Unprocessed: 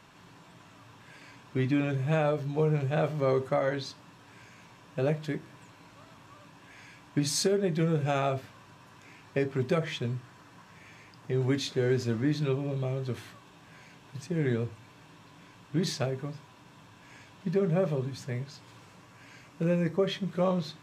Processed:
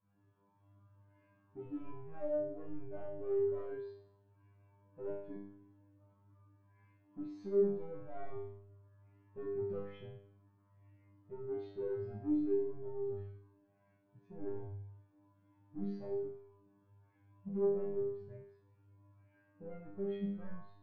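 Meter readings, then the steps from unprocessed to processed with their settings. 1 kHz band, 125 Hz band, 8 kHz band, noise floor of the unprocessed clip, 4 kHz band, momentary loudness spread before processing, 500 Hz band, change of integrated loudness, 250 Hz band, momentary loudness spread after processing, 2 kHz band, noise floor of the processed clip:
-18.5 dB, -19.5 dB, under -40 dB, -55 dBFS, under -30 dB, 12 LU, -7.5 dB, -10.0 dB, -10.5 dB, 19 LU, under -25 dB, -72 dBFS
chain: overload inside the chain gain 31.5 dB; tape spacing loss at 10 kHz 35 dB; feedback comb 100 Hz, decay 0.88 s, harmonics all, mix 100%; spectral contrast expander 1.5:1; trim +15 dB

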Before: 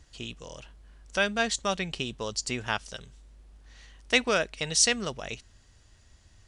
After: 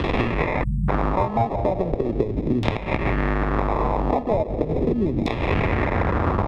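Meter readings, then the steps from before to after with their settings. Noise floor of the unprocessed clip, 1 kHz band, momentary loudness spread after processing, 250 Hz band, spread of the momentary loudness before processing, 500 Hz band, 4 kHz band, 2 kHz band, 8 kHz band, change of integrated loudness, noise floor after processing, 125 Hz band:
-59 dBFS, +12.5 dB, 2 LU, +14.0 dB, 19 LU, +10.0 dB, -9.0 dB, +1.5 dB, under -25 dB, +5.0 dB, -29 dBFS, +19.0 dB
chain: one-bit delta coder 64 kbps, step -33.5 dBFS; recorder AGC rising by 72 dB/s; high-pass 72 Hz 12 dB/octave; peaking EQ 7.8 kHz -10 dB 0.82 oct; comb 3 ms, depth 35%; on a send: feedback echo behind a band-pass 187 ms, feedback 76%, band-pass 1 kHz, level -13 dB; on the sum: sample-rate reducer 1.5 kHz, jitter 0%; LFO low-pass saw down 0.38 Hz 270–3400 Hz; spectral selection erased 0.63–0.89 s, 230–7300 Hz; three bands compressed up and down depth 100%; trim +2 dB

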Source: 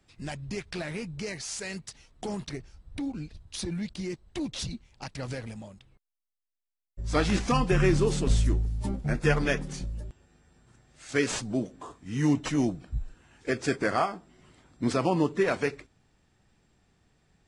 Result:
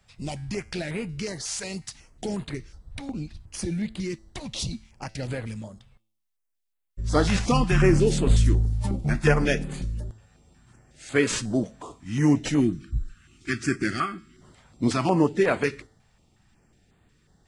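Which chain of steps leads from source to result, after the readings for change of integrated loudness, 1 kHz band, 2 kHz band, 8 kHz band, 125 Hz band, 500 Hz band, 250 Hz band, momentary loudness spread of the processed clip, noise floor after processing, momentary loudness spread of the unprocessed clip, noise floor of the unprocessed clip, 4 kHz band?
+4.0 dB, +2.0 dB, +3.0 dB, +4.0 dB, +5.0 dB, +3.0 dB, +4.0 dB, 16 LU, -76 dBFS, 16 LU, under -85 dBFS, +3.0 dB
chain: time-frequency box 12.60–14.41 s, 400–1100 Hz -19 dB; feedback comb 110 Hz, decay 0.57 s, harmonics all, mix 40%; step-sequenced notch 5.5 Hz 320–5600 Hz; trim +8.5 dB

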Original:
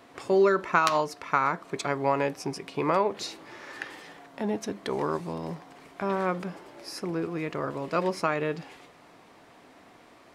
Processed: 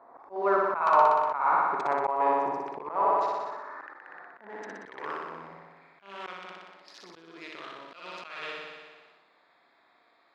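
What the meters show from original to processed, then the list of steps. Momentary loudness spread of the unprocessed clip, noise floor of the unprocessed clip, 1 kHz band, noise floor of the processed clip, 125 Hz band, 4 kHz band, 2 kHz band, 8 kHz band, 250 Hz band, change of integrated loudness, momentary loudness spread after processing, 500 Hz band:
17 LU, -55 dBFS, +3.5 dB, -65 dBFS, -19.0 dB, -7.5 dB, -3.5 dB, under -15 dB, -11.0 dB, +2.0 dB, 21 LU, -3.5 dB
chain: local Wiener filter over 15 samples; band-pass sweep 900 Hz -> 3.3 kHz, 2.95–6.42 s; flutter echo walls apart 10.4 m, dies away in 1.3 s; slow attack 230 ms; decay stretcher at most 37 dB/s; trim +6.5 dB

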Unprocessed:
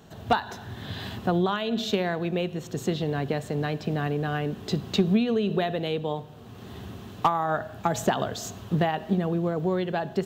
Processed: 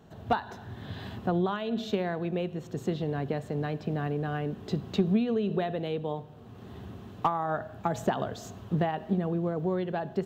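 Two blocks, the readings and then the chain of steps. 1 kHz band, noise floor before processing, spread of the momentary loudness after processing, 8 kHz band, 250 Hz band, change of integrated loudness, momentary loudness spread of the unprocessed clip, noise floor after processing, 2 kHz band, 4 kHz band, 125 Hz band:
-4.0 dB, -44 dBFS, 13 LU, under -10 dB, -3.0 dB, -3.5 dB, 11 LU, -47 dBFS, -6.5 dB, -9.0 dB, -3.0 dB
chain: treble shelf 2.3 kHz -9 dB; trim -3 dB

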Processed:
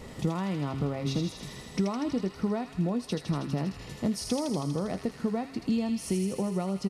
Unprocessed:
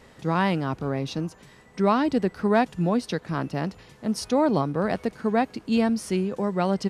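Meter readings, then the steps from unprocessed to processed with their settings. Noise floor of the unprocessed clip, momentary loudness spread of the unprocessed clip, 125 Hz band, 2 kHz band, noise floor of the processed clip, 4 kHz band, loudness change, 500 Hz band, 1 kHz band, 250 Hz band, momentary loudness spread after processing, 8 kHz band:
-53 dBFS, 8 LU, -2.0 dB, -11.5 dB, -46 dBFS, -3.0 dB, -6.0 dB, -8.0 dB, -11.5 dB, -4.5 dB, 4 LU, +0.5 dB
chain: doubling 21 ms -14 dB; de-hum 135 Hz, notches 3; gain riding 2 s; treble shelf 4.7 kHz +6 dB; compression 12:1, threshold -32 dBFS, peak gain reduction 19 dB; bass shelf 490 Hz +9 dB; band-stop 1.6 kHz, Q 6; feedback echo behind a high-pass 80 ms, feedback 79%, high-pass 1.8 kHz, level -4 dB

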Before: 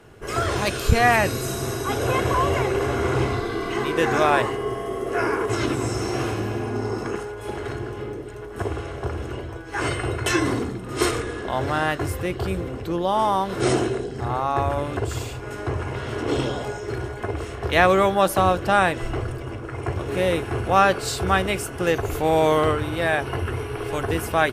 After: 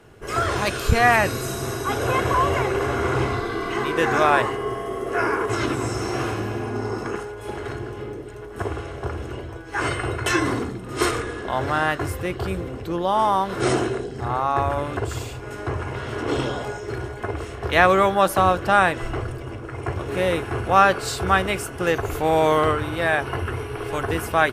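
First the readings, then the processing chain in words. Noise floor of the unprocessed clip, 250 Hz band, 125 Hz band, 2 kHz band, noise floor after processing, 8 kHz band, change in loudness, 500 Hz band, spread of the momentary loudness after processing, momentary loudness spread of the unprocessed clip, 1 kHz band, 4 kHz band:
-34 dBFS, -1.0 dB, -1.0 dB, +2.0 dB, -35 dBFS, -1.0 dB, +0.5 dB, -0.5 dB, 13 LU, 12 LU, +1.5 dB, -0.5 dB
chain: dynamic bell 1.3 kHz, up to +4 dB, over -35 dBFS, Q 0.98; trim -1 dB

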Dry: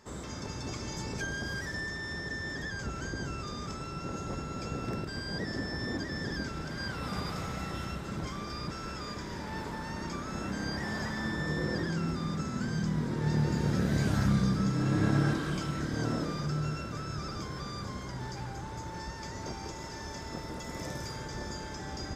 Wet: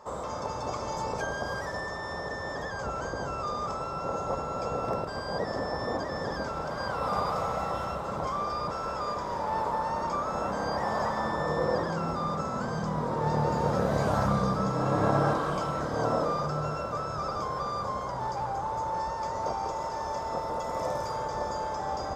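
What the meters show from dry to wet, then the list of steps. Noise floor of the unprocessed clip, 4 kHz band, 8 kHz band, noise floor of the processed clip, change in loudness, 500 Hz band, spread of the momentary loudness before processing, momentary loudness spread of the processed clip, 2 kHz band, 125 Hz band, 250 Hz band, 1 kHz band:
-41 dBFS, -2.0 dB, -2.0 dB, -35 dBFS, +3.5 dB, +9.5 dB, 11 LU, 7 LU, 0.0 dB, -2.0 dB, -2.0 dB, +12.0 dB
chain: high-order bell 770 Hz +15.5 dB; trim -2 dB

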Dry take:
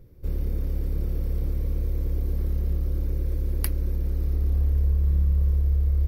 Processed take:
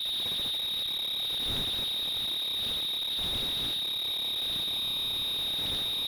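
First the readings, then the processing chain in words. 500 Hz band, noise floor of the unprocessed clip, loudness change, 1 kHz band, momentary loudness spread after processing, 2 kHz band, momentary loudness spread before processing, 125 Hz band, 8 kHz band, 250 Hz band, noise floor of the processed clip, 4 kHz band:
-6.0 dB, -26 dBFS, -1.5 dB, +7.5 dB, 1 LU, +9.5 dB, 6 LU, -24.0 dB, +5.0 dB, -8.5 dB, -32 dBFS, +30.5 dB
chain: wind noise 120 Hz -17 dBFS; frequency inversion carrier 3.8 kHz; slew-rate limiter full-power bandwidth 110 Hz

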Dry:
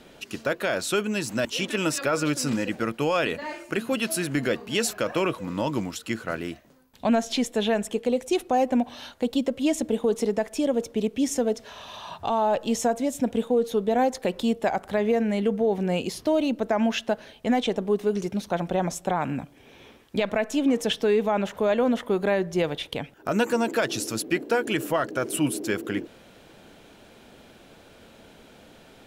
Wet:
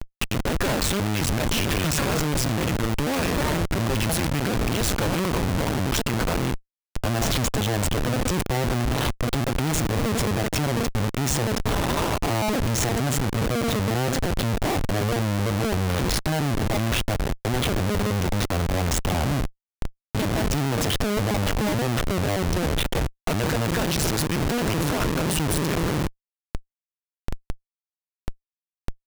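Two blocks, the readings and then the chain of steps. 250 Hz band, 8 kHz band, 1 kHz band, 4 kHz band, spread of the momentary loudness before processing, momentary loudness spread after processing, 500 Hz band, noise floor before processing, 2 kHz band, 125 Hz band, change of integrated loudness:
0.0 dB, +5.5 dB, +0.5 dB, +4.5 dB, 7 LU, 5 LU, -3.0 dB, -52 dBFS, +2.5 dB, +12.5 dB, +1.5 dB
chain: cycle switcher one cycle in 2, muted; Schmitt trigger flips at -40 dBFS; trim +7 dB

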